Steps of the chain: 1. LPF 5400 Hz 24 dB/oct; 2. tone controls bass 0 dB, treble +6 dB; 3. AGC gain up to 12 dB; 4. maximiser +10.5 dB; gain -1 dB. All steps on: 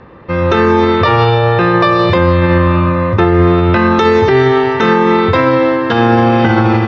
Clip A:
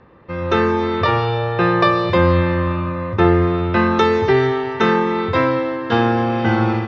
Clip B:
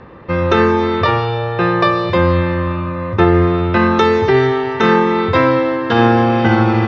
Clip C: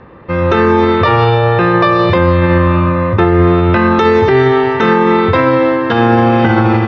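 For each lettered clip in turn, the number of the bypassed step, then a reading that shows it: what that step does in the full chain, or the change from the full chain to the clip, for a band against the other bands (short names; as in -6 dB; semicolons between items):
4, crest factor change +6.5 dB; 3, momentary loudness spread change +4 LU; 2, 4 kHz band -2.0 dB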